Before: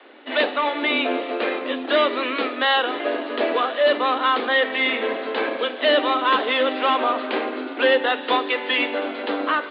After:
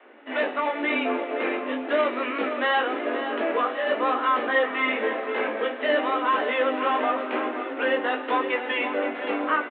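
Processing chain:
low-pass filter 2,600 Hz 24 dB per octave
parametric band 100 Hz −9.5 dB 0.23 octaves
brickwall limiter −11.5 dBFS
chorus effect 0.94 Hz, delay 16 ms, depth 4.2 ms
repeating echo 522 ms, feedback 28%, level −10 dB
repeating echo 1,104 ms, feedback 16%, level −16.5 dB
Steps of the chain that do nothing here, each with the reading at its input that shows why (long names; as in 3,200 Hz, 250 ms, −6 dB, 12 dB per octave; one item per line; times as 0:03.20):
parametric band 100 Hz: nothing at its input below 200 Hz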